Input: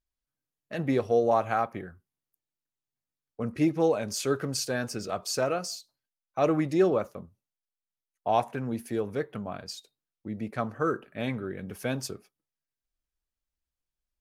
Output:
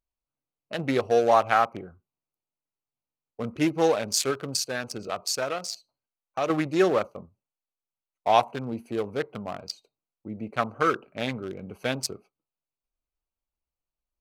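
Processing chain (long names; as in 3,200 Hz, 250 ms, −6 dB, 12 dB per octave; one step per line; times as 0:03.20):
adaptive Wiener filter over 25 samples
tilt shelving filter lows −7 dB, about 710 Hz
0:04.30–0:06.50: downward compressor 2 to 1, threshold −34 dBFS, peak gain reduction 8 dB
level +5 dB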